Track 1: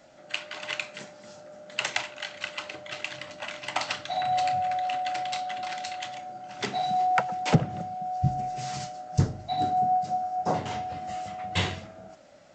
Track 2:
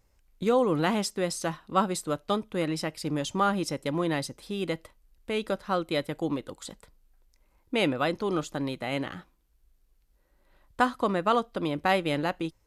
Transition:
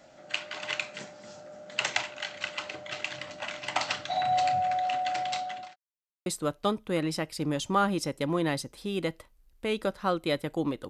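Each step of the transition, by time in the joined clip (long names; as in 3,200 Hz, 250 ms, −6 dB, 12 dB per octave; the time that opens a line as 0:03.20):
track 1
0:05.24–0:05.76: fade out equal-power
0:05.76–0:06.26: silence
0:06.26: continue with track 2 from 0:01.91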